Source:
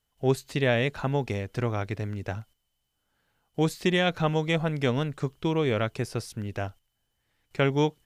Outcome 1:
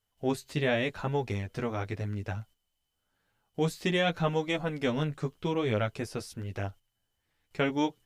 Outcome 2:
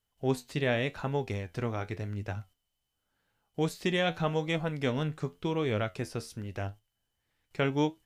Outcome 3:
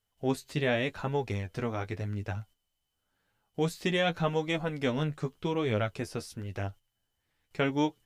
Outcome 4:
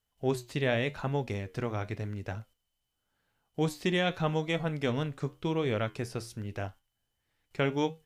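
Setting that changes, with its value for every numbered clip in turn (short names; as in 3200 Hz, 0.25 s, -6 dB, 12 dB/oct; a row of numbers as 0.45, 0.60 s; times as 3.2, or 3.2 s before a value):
flange, regen: -7, +68, +26, -75%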